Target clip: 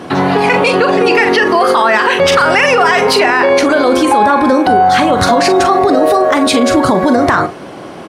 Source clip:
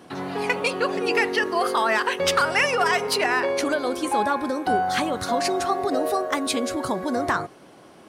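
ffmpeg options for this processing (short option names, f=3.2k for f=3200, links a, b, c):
-filter_complex "[0:a]lowpass=f=3.7k:p=1,asplit=2[a][b];[b]adelay=42,volume=-10.5dB[c];[a][c]amix=inputs=2:normalize=0,alimiter=level_in=20.5dB:limit=-1dB:release=50:level=0:latency=1,volume=-1dB"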